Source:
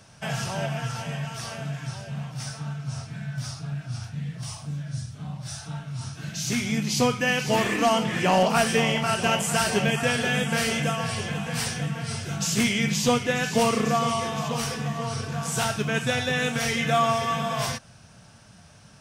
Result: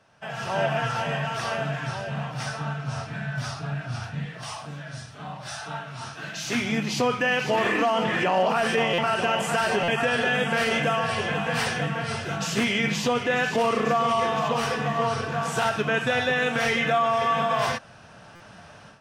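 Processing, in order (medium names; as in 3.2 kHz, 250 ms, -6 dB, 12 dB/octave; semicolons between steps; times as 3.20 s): 4.25–6.55 s: bass shelf 220 Hz -11 dB; level rider gain up to 15 dB; tone controls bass -11 dB, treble -15 dB; peak limiter -9.5 dBFS, peak gain reduction 9.5 dB; band-stop 2.2 kHz, Q 18; buffer glitch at 8.93/9.83/18.35 s, samples 256, times 8; trim -4.5 dB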